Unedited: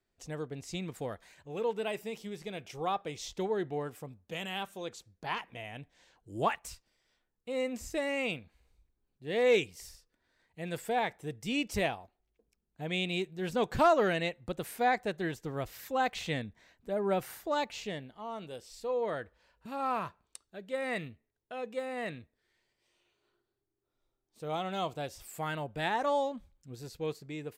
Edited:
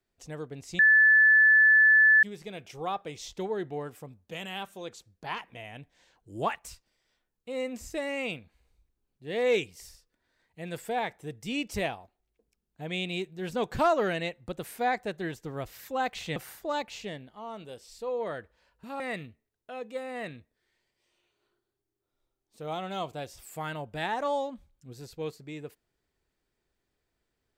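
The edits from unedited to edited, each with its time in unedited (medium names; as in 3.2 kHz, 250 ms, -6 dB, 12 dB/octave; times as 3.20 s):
0.79–2.23 s: bleep 1.74 kHz -15.5 dBFS
16.36–17.18 s: delete
19.82–20.82 s: delete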